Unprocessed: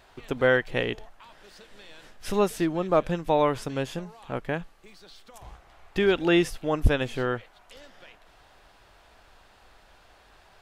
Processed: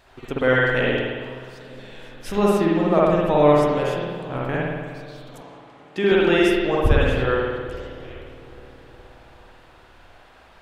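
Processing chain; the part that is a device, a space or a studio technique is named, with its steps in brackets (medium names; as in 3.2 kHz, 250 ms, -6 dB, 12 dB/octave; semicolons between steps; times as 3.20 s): dub delay into a spring reverb (filtered feedback delay 417 ms, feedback 62%, low-pass 1.1 kHz, level -16 dB; spring tank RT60 1.4 s, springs 54 ms, chirp 55 ms, DRR -5 dB); 5.41–6.12 s: Chebyshev band-pass 220–8900 Hz, order 2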